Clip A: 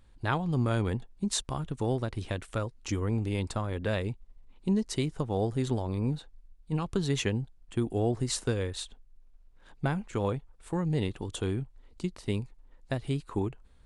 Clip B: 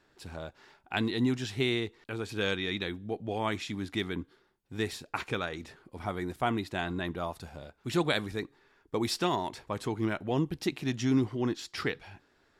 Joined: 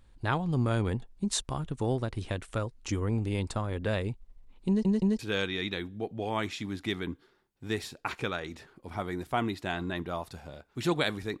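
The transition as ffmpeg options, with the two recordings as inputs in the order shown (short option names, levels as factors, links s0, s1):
-filter_complex "[0:a]apad=whole_dur=11.4,atrim=end=11.4,asplit=3[s0][s1][s2];[s0]atrim=end=4.852[s3];[s1]atrim=start=4.678:end=4.852[s4];[s2]atrim=start=4.678:end=4.852[s5];[1:a]atrim=start=2.278:end=8.49[s6];[s3][s4]acrossfade=d=0.004:c1=hsin:c2=hsin[s7];[s7][s5]acrossfade=d=0.004:c1=hsin:c2=hsin[s8];[s8][s6]acrossfade=d=0.004:c1=hsin:c2=hsin"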